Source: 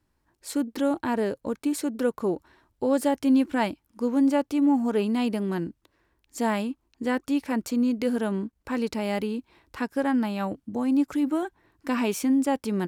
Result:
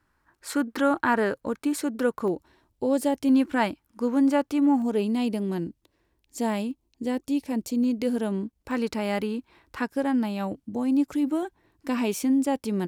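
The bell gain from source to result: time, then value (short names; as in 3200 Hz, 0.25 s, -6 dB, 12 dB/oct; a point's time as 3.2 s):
bell 1400 Hz 1.2 oct
+12 dB
from 1.34 s +4.5 dB
from 2.28 s -6 dB
from 3.29 s +3.5 dB
from 4.82 s -7.5 dB
from 6.71 s -14 dB
from 7.84 s -5.5 dB
from 8.71 s +3 dB
from 9.9 s -4.5 dB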